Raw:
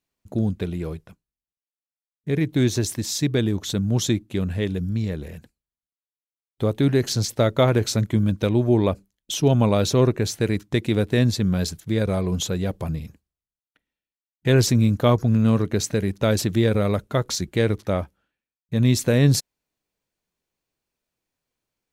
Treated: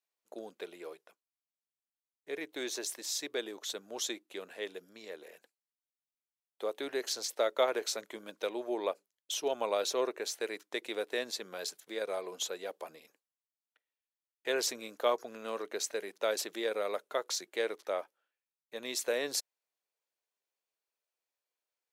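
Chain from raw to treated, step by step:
high-pass filter 440 Hz 24 dB per octave
level −8 dB

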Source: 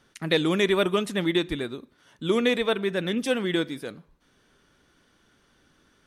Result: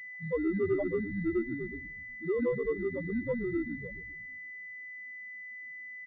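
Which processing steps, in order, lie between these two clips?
spectral peaks only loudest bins 1
echo with shifted repeats 122 ms, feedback 53%, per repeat −100 Hz, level −11 dB
switching amplifier with a slow clock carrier 2,000 Hz

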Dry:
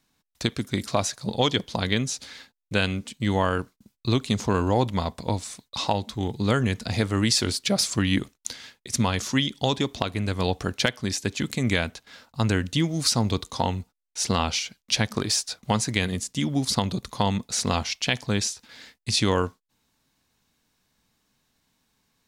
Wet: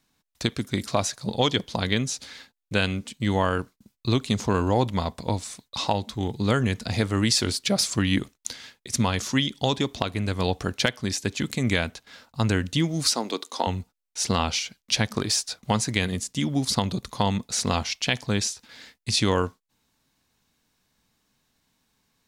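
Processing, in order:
0:13.09–0:13.67: high-pass filter 270 Hz 24 dB per octave

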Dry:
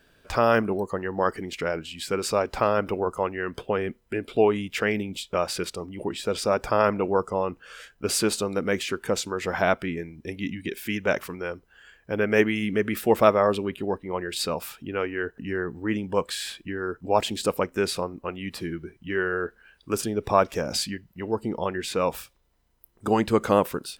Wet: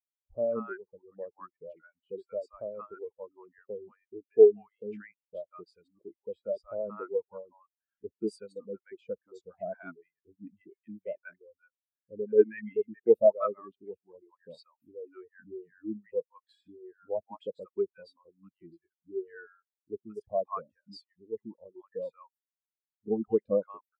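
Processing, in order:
reverb reduction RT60 1 s
multiband delay without the direct sound lows, highs 180 ms, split 820 Hz
every bin expanded away from the loudest bin 2.5 to 1

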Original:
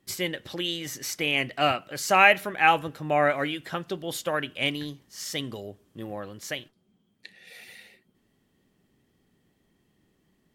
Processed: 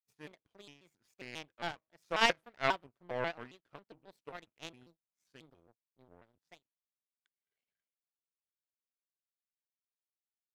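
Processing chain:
high-shelf EQ 2,600 Hz −11 dB
hum removal 188.6 Hz, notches 6
power curve on the samples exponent 2
pitch modulation by a square or saw wave square 3.7 Hz, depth 250 cents
level −2 dB

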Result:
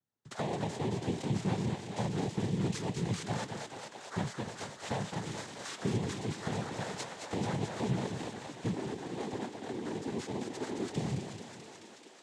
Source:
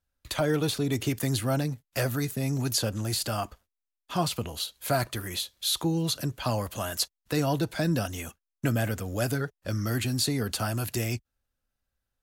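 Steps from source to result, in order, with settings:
samples in bit-reversed order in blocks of 16 samples
downward compressor, threshold −28 dBFS, peak gain reduction 7.5 dB
low-shelf EQ 190 Hz +5 dB
0:08.72–0:10.88: ring modulation 140 Hz
high-shelf EQ 6,000 Hz −9 dB
feedback echo with a high-pass in the loop 217 ms, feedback 81%, high-pass 240 Hz, level −5 dB
cochlear-implant simulation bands 6
level −3.5 dB

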